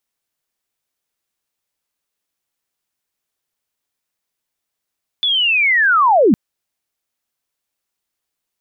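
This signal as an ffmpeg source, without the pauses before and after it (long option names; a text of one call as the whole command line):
ffmpeg -f lavfi -i "aevalsrc='pow(10,(-13.5+6*t/1.11)/20)*sin(2*PI*(3500*t-3320*t*t/(2*1.11)))':duration=1.11:sample_rate=44100" out.wav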